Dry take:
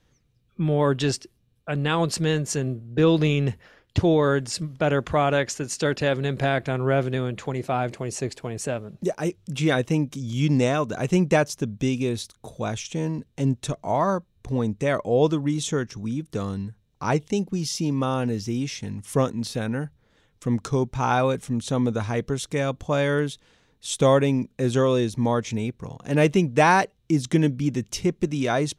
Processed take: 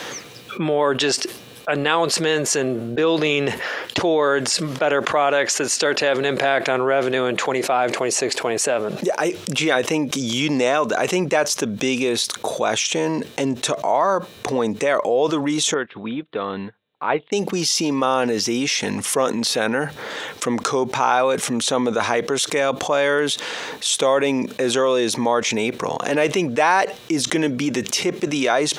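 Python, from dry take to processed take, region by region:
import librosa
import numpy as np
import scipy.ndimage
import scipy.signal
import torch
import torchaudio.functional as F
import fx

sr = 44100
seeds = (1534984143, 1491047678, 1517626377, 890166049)

y = fx.chain(x, sr, fx.ellip_lowpass(hz=3700.0, order=4, stop_db=40),
    fx.upward_expand(threshold_db=-42.0, expansion=2.5), at=(15.74, 17.32))
y = scipy.signal.sosfilt(scipy.signal.butter(2, 470.0, 'highpass', fs=sr, output='sos'), y)
y = fx.high_shelf(y, sr, hz=6000.0, db=-5.0)
y = fx.env_flatten(y, sr, amount_pct=70)
y = y * 10.0 ** (1.0 / 20.0)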